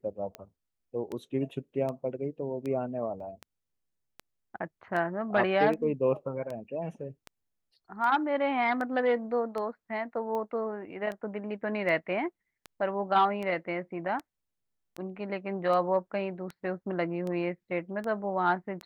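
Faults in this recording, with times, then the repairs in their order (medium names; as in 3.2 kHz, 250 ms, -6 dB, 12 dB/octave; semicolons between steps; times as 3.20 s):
tick 78 rpm -24 dBFS
3.20 s: dropout 3.3 ms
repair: de-click; interpolate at 3.20 s, 3.3 ms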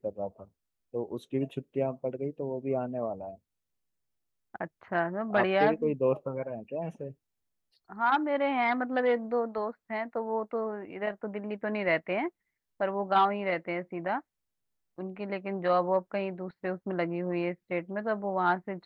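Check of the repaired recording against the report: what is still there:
nothing left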